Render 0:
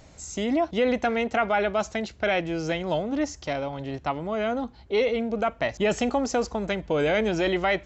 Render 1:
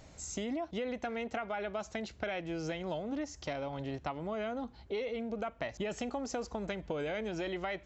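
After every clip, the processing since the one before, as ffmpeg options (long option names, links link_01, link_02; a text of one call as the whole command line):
ffmpeg -i in.wav -af "acompressor=threshold=-30dB:ratio=6,volume=-4dB" out.wav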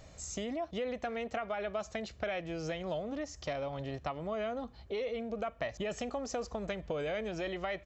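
ffmpeg -i in.wav -af "aecho=1:1:1.7:0.31" out.wav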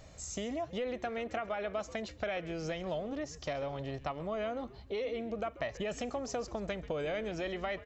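ffmpeg -i in.wav -filter_complex "[0:a]asplit=4[link_01][link_02][link_03][link_04];[link_02]adelay=135,afreqshift=-140,volume=-17dB[link_05];[link_03]adelay=270,afreqshift=-280,volume=-26.9dB[link_06];[link_04]adelay=405,afreqshift=-420,volume=-36.8dB[link_07];[link_01][link_05][link_06][link_07]amix=inputs=4:normalize=0" out.wav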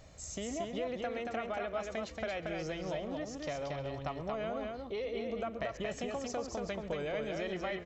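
ffmpeg -i in.wav -af "aecho=1:1:112|229:0.106|0.668,volume=-2dB" out.wav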